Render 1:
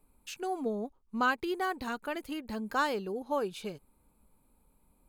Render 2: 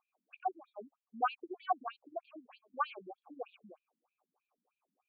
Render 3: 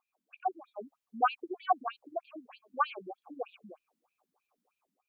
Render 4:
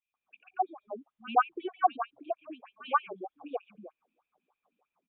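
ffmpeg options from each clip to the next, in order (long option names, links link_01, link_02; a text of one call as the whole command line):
ffmpeg -i in.wav -filter_complex "[0:a]asplit=3[link_01][link_02][link_03];[link_01]bandpass=frequency=730:width_type=q:width=8,volume=0dB[link_04];[link_02]bandpass=frequency=1090:width_type=q:width=8,volume=-6dB[link_05];[link_03]bandpass=frequency=2440:width_type=q:width=8,volume=-9dB[link_06];[link_04][link_05][link_06]amix=inputs=3:normalize=0,afftfilt=real='re*between(b*sr/1024,200*pow(3400/200,0.5+0.5*sin(2*PI*3.2*pts/sr))/1.41,200*pow(3400/200,0.5+0.5*sin(2*PI*3.2*pts/sr))*1.41)':imag='im*between(b*sr/1024,200*pow(3400/200,0.5+0.5*sin(2*PI*3.2*pts/sr))/1.41,200*pow(3400/200,0.5+0.5*sin(2*PI*3.2*pts/sr))*1.41)':win_size=1024:overlap=0.75,volume=10.5dB" out.wav
ffmpeg -i in.wav -af "dynaudnorm=framelen=300:gausssize=3:maxgain=5dB" out.wav
ffmpeg -i in.wav -filter_complex "[0:a]acrossover=split=150|2400[link_01][link_02][link_03];[link_01]adelay=60[link_04];[link_02]adelay=140[link_05];[link_04][link_05][link_03]amix=inputs=3:normalize=0,aresample=8000,aresample=44100,volume=3dB" out.wav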